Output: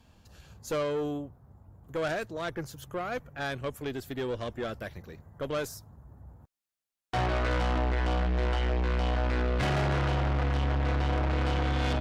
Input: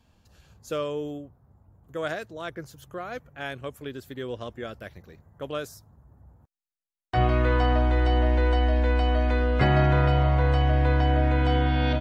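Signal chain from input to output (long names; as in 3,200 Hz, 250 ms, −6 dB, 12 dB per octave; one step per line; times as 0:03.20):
tube saturation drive 30 dB, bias 0.35
level +4.5 dB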